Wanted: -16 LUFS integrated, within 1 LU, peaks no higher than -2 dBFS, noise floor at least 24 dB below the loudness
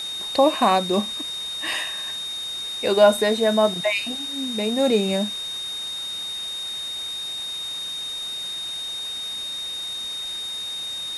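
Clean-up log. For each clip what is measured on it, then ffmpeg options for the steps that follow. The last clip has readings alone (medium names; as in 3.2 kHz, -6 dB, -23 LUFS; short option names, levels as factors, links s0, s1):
steady tone 3.7 kHz; tone level -28 dBFS; noise floor -31 dBFS; noise floor target -48 dBFS; loudness -23.5 LUFS; peak level -4.0 dBFS; loudness target -16.0 LUFS
-> -af "bandreject=f=3700:w=30"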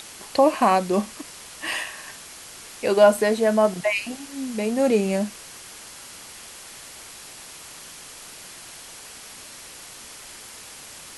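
steady tone not found; noise floor -42 dBFS; noise floor target -46 dBFS
-> -af "afftdn=nr=6:nf=-42"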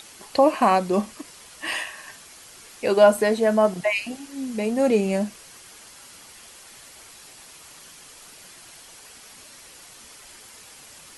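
noise floor -47 dBFS; loudness -22.0 LUFS; peak level -4.5 dBFS; loudness target -16.0 LUFS
-> -af "volume=2,alimiter=limit=0.794:level=0:latency=1"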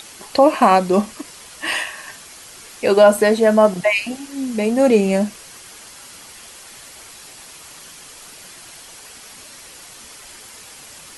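loudness -16.5 LUFS; peak level -2.0 dBFS; noise floor -41 dBFS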